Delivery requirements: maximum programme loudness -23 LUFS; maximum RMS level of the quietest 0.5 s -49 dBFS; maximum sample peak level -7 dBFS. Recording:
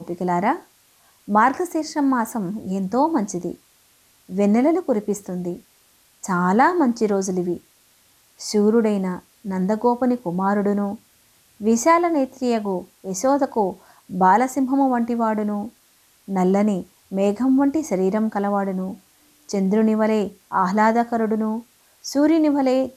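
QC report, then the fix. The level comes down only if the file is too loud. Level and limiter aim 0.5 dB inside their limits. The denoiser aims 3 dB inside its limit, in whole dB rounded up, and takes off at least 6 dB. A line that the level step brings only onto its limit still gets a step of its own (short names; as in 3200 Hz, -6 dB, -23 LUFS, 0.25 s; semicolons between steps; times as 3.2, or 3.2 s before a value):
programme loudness -21.0 LUFS: fail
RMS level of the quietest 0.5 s -58 dBFS: OK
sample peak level -6.0 dBFS: fail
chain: gain -2.5 dB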